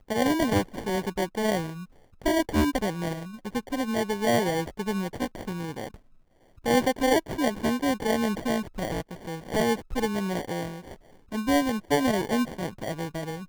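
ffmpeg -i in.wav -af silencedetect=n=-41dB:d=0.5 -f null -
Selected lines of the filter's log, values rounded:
silence_start: 5.96
silence_end: 6.58 | silence_duration: 0.62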